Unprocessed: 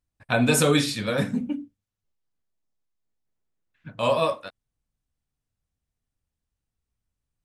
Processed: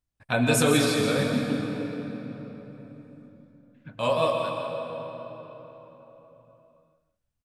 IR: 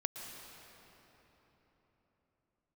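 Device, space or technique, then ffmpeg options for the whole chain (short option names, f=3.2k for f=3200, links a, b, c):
cave: -filter_complex "[0:a]aecho=1:1:167:0.299[a];[1:a]atrim=start_sample=2205[b];[a][b]afir=irnorm=-1:irlink=0,volume=-1.5dB"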